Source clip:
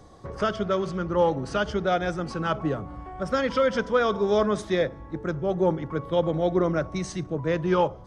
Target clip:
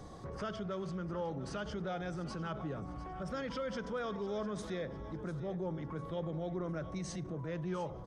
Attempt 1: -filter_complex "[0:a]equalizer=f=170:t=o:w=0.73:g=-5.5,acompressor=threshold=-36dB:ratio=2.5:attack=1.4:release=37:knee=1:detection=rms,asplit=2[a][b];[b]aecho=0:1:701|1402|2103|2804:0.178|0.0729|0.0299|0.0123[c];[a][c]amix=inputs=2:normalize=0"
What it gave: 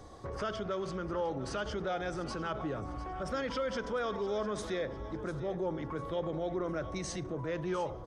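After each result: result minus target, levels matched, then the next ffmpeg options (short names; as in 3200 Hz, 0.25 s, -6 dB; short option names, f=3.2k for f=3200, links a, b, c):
compressor: peak gain reduction -4.5 dB; 125 Hz band -4.0 dB
-filter_complex "[0:a]equalizer=f=170:t=o:w=0.73:g=-5.5,acompressor=threshold=-43.5dB:ratio=2.5:attack=1.4:release=37:knee=1:detection=rms,asplit=2[a][b];[b]aecho=0:1:701|1402|2103|2804:0.178|0.0729|0.0299|0.0123[c];[a][c]amix=inputs=2:normalize=0"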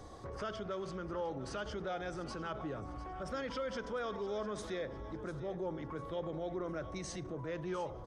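125 Hz band -4.0 dB
-filter_complex "[0:a]equalizer=f=170:t=o:w=0.73:g=4.5,acompressor=threshold=-43.5dB:ratio=2.5:attack=1.4:release=37:knee=1:detection=rms,asplit=2[a][b];[b]aecho=0:1:701|1402|2103|2804:0.178|0.0729|0.0299|0.0123[c];[a][c]amix=inputs=2:normalize=0"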